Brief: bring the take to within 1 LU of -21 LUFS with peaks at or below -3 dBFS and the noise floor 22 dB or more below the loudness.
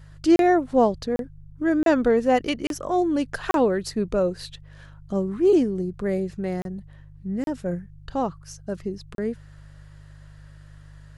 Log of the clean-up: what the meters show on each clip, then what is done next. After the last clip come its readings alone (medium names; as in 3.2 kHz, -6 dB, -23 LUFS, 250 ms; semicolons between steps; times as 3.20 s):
dropouts 8; longest dropout 32 ms; hum 50 Hz; highest harmonic 150 Hz; hum level -44 dBFS; loudness -24.0 LUFS; peak level -8.0 dBFS; loudness target -21.0 LUFS
-> interpolate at 0.36/1.16/1.83/2.67/3.51/6.62/7.44/9.15 s, 32 ms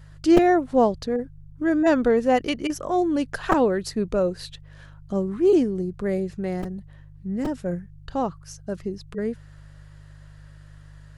dropouts 0; hum 50 Hz; highest harmonic 150 Hz; hum level -44 dBFS
-> de-hum 50 Hz, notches 3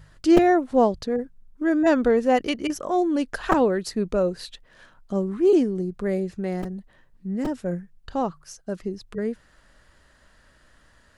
hum not found; loudness -23.5 LUFS; peak level -1.5 dBFS; loudness target -21.0 LUFS
-> trim +2.5 dB; peak limiter -3 dBFS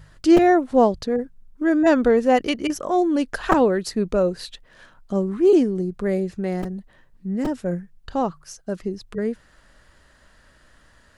loudness -21.0 LUFS; peak level -3.0 dBFS; noise floor -55 dBFS